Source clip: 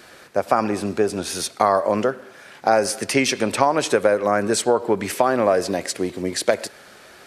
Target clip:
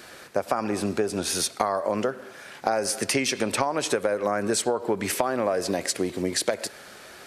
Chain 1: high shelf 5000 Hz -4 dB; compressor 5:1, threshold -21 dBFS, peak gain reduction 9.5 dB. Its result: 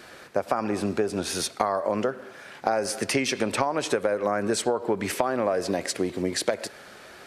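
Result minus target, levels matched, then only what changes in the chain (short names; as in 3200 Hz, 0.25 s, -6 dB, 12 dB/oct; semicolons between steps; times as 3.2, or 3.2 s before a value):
8000 Hz band -3.5 dB
change: high shelf 5000 Hz +3 dB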